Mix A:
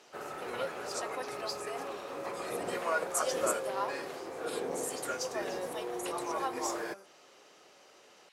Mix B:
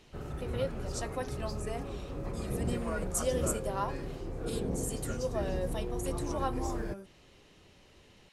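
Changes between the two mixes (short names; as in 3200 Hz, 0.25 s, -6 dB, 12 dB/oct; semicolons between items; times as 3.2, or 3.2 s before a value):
background -9.0 dB; master: remove HPF 630 Hz 12 dB/oct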